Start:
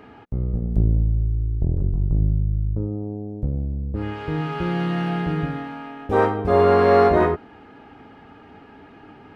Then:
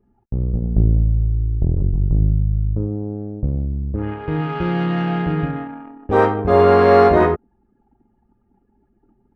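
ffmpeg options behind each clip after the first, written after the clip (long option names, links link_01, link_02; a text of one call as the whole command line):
ffmpeg -i in.wav -af "anlmdn=25.1,volume=3.5dB" out.wav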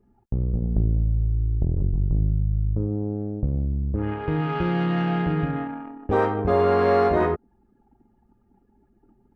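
ffmpeg -i in.wav -af "acompressor=threshold=-22dB:ratio=2" out.wav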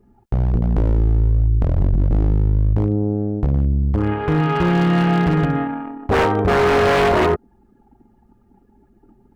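ffmpeg -i in.wav -af "aeval=exprs='0.133*(abs(mod(val(0)/0.133+3,4)-2)-1)':channel_layout=same,volume=7.5dB" out.wav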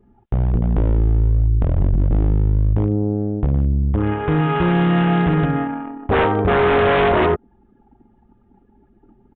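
ffmpeg -i in.wav -af "aresample=8000,aresample=44100" out.wav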